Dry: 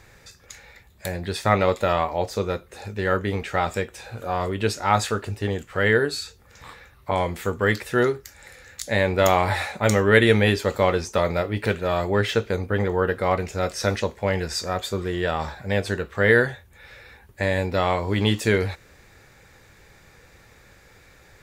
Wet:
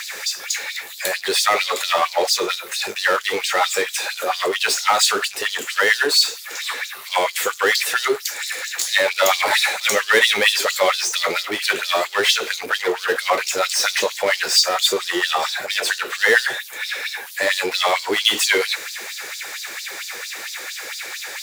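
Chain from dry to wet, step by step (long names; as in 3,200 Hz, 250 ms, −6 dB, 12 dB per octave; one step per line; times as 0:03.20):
tilt shelving filter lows −8.5 dB, about 1,200 Hz
power curve on the samples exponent 0.5
auto-filter high-pass sine 4.4 Hz 340–4,700 Hz
level −6.5 dB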